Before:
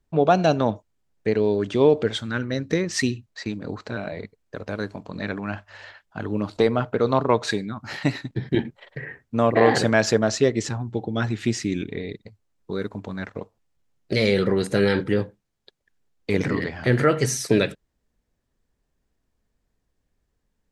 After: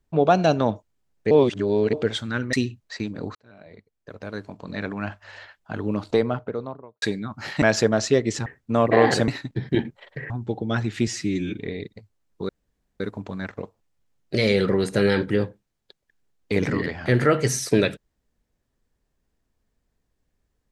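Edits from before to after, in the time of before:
1.31–1.93 s: reverse
2.53–2.99 s: delete
3.81–5.44 s: fade in
6.42–7.48 s: studio fade out
8.08–9.10 s: swap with 9.92–10.76 s
11.53–11.87 s: stretch 1.5×
12.78 s: insert room tone 0.51 s

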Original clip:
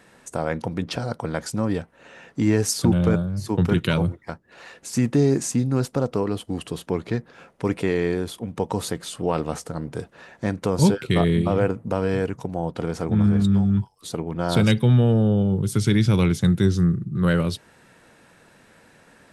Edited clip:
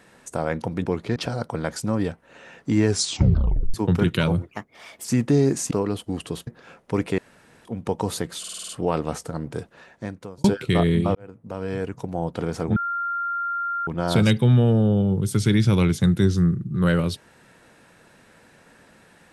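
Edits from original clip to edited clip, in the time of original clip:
2.58 s: tape stop 0.86 s
4.19–4.89 s: speed 127%
5.56–6.12 s: delete
6.88–7.18 s: move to 0.86 s
7.89–8.36 s: room tone
9.10 s: stutter 0.05 s, 7 plays
9.98–10.85 s: fade out
11.56–12.61 s: fade in
13.17–14.28 s: bleep 1.39 kHz -23.5 dBFS

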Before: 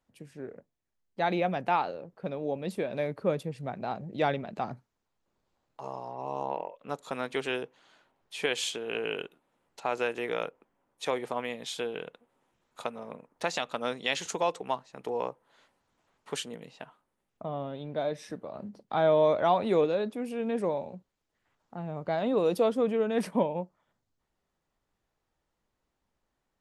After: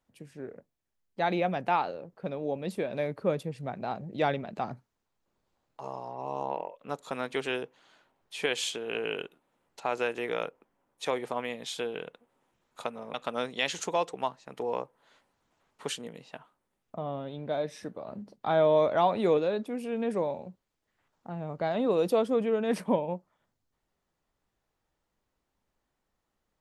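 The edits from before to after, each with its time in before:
13.14–13.61 s: delete

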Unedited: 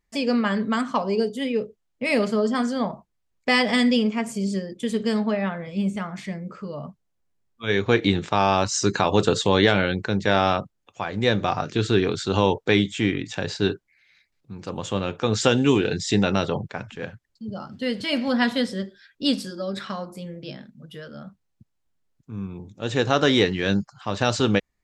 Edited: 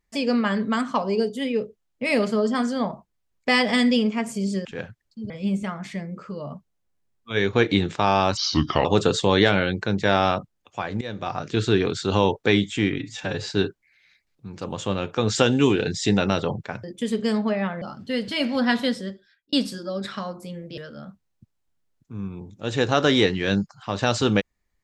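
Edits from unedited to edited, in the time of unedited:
4.65–5.63 s: swap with 16.89–17.54 s
8.70–9.07 s: speed 77%
11.23–11.80 s: fade in, from -18 dB
13.20–13.53 s: stretch 1.5×
18.59–19.25 s: fade out
20.50–20.96 s: delete

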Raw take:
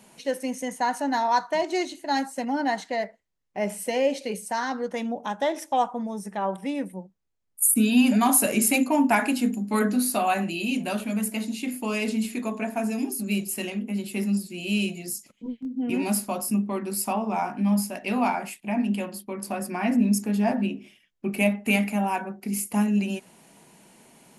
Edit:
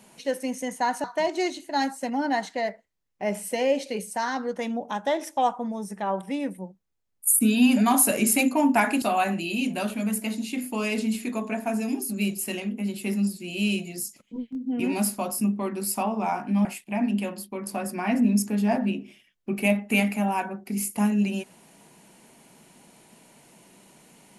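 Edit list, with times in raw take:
1.04–1.39 s: delete
9.37–10.12 s: delete
17.75–18.41 s: delete

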